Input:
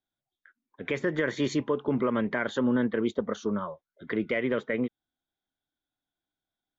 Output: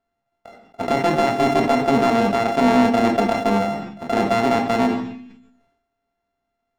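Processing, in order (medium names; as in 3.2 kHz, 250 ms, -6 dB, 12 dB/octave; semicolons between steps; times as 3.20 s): sorted samples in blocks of 64 samples; low-pass 1.6 kHz 6 dB/octave; peaking EQ 800 Hz +8.5 dB 0.37 oct; in parallel at -2 dB: compression, threshold -36 dBFS, peak gain reduction 14.5 dB; on the sum: saturation -17.5 dBFS, distortion -17 dB; on a send at -4.5 dB: reverberation RT60 0.65 s, pre-delay 3 ms; on the sum: decay stretcher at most 60 dB/s; trim +7.5 dB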